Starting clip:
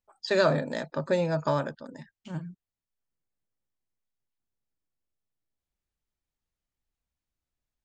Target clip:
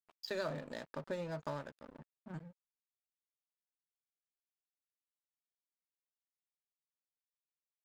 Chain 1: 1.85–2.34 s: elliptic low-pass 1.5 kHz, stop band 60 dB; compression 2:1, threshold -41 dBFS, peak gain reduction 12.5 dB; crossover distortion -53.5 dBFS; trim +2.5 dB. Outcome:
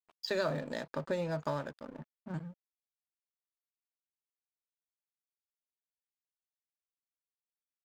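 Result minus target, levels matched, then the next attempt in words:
compression: peak gain reduction -5.5 dB
1.85–2.34 s: elliptic low-pass 1.5 kHz, stop band 60 dB; compression 2:1, threshold -52 dBFS, peak gain reduction 18 dB; crossover distortion -53.5 dBFS; trim +2.5 dB

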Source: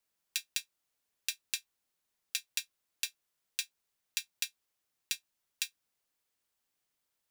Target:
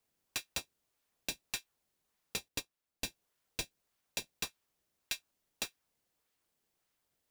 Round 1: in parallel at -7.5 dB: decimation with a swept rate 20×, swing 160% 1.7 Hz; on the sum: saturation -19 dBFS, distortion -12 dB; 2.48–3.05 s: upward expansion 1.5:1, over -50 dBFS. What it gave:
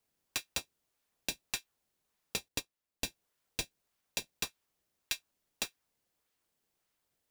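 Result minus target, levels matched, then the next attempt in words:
saturation: distortion -5 dB
in parallel at -7.5 dB: decimation with a swept rate 20×, swing 160% 1.7 Hz; on the sum: saturation -26 dBFS, distortion -8 dB; 2.48–3.05 s: upward expansion 1.5:1, over -50 dBFS

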